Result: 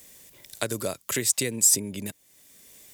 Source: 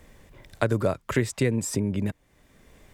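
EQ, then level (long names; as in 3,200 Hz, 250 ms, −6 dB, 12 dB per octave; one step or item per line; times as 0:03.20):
spectral tilt +4 dB per octave
low-shelf EQ 100 Hz −5.5 dB
parametric band 1,300 Hz −11.5 dB 2.6 octaves
+4.0 dB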